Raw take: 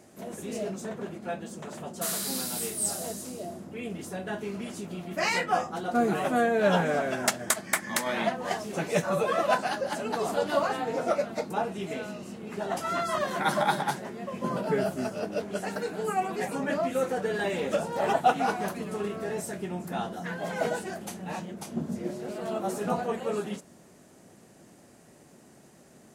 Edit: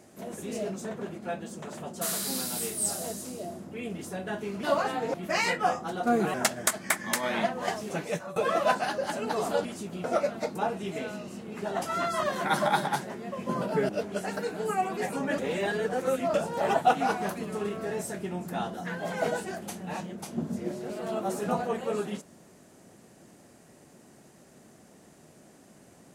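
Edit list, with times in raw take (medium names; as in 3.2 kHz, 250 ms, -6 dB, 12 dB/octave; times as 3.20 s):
4.63–5.02 s: swap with 10.48–10.99 s
6.22–7.17 s: delete
8.69–9.19 s: fade out, to -18 dB
14.84–15.28 s: delete
16.77–17.73 s: reverse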